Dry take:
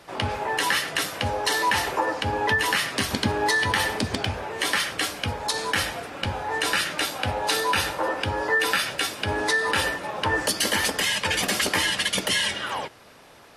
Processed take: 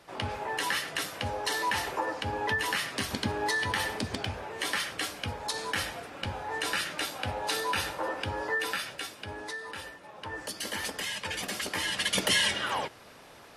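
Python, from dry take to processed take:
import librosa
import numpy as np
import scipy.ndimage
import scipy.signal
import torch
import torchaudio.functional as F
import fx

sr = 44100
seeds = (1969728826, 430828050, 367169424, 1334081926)

y = fx.gain(x, sr, db=fx.line((8.41, -7.0), (9.91, -18.5), (10.85, -10.5), (11.7, -10.5), (12.23, -1.5)))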